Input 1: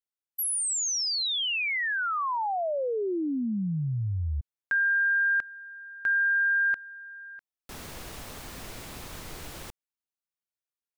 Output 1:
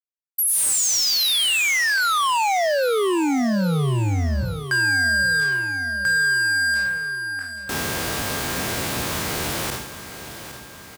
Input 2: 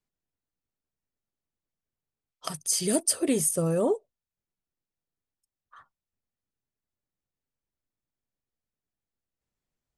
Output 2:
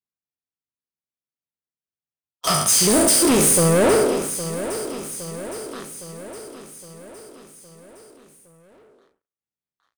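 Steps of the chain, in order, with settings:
peak hold with a decay on every bin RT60 0.77 s
high-pass filter 86 Hz 12 dB per octave
in parallel at −8 dB: hard clipping −16.5 dBFS
on the sum: leveller curve on the samples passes 5
repeating echo 813 ms, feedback 57%, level −12 dB
level −6 dB

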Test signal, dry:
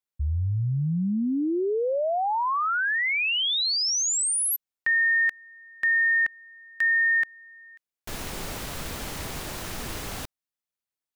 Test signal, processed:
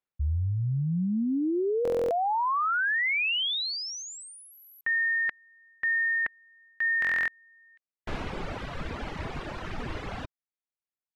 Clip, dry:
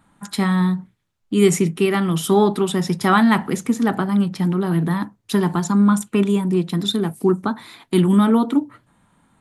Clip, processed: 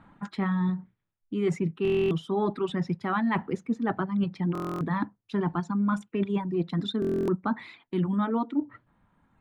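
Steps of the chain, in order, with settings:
reverb reduction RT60 1.9 s
low-pass filter 2,400 Hz 12 dB per octave
reversed playback
downward compressor 6 to 1, threshold −29 dBFS
reversed playback
buffer that repeats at 0:01.83/0:04.53/0:07.00, samples 1,024, times 11
level +4 dB

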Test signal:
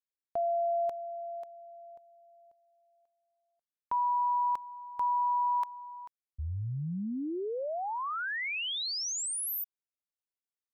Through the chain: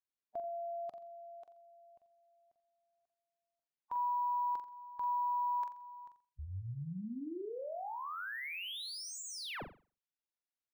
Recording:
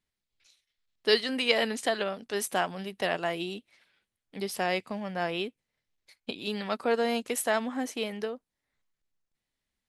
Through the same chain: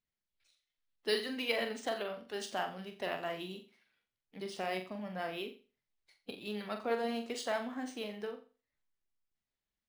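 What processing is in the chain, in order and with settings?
spectral magnitudes quantised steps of 15 dB
flutter between parallel walls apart 7.4 metres, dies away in 0.35 s
linearly interpolated sample-rate reduction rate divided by 3×
level −8 dB

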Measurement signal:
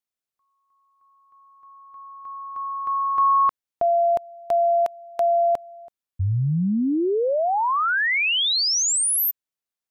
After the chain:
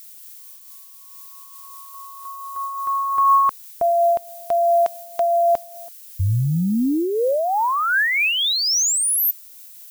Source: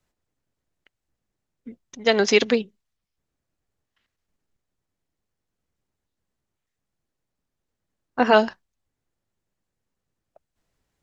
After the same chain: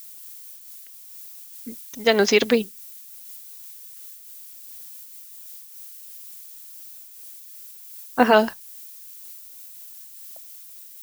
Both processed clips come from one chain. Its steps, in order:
background noise violet −44 dBFS
amplitude modulation by smooth noise, depth 50%
level +4.5 dB

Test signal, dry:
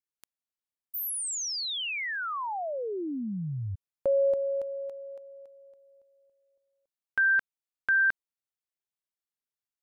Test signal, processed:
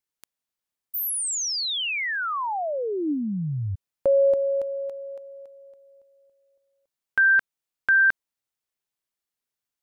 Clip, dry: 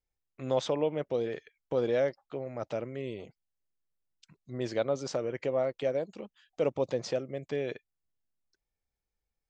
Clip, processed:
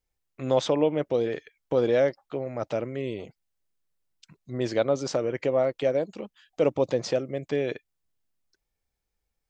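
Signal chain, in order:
dynamic equaliser 300 Hz, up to +4 dB, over −50 dBFS, Q 7.4
level +5.5 dB

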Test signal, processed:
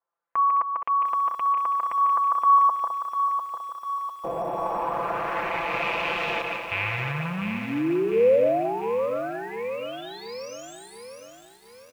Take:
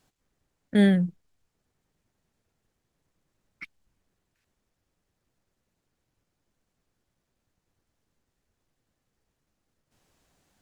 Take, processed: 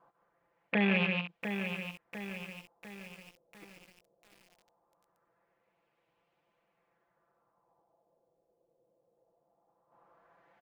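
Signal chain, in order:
loose part that buzzes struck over −35 dBFS, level −17 dBFS
flat-topped bell 710 Hz +8.5 dB
comb filter 5.9 ms, depth 82%
on a send: multi-tap delay 146/209 ms −9/−17.5 dB
on the sum: downward compressor 2.5 to 1, threshold −22 dBFS
high-pass filter 270 Hz 6 dB per octave
brickwall limiter −17.5 dBFS
auto-filter low-pass sine 0.2 Hz 510–2,700 Hz
feedback echo at a low word length 699 ms, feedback 55%, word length 8 bits, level −7.5 dB
level −2.5 dB

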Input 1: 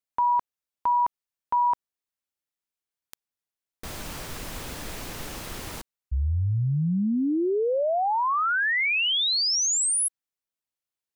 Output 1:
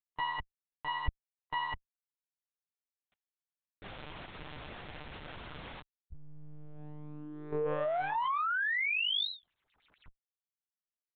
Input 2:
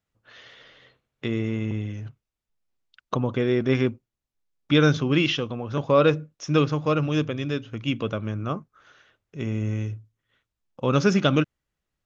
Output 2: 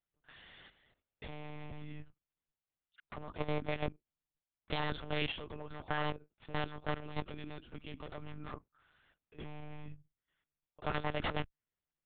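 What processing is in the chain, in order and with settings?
wavefolder on the positive side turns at −22.5 dBFS
parametric band 160 Hz −11.5 dB 1 octave
output level in coarse steps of 13 dB
tube saturation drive 21 dB, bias 0.35
one-pitch LPC vocoder at 8 kHz 150 Hz
level −4 dB

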